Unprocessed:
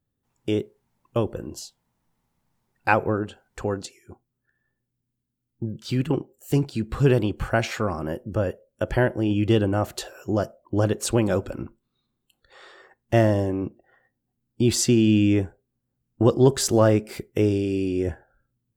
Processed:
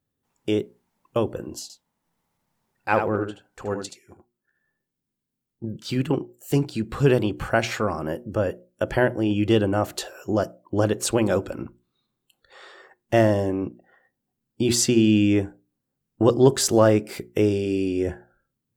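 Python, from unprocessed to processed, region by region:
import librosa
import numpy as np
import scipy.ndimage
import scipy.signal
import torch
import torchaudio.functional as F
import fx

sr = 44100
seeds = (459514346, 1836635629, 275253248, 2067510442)

y = fx.chain(x, sr, fx.transient(attack_db=-8, sustain_db=-4),
    fx.echo_single(ms=76, db=-7.0), at=(1.62, 5.64))
y = fx.low_shelf(y, sr, hz=90.0, db=-9.5)
y = fx.hum_notches(y, sr, base_hz=60, count=6)
y = F.gain(torch.from_numpy(y), 2.0).numpy()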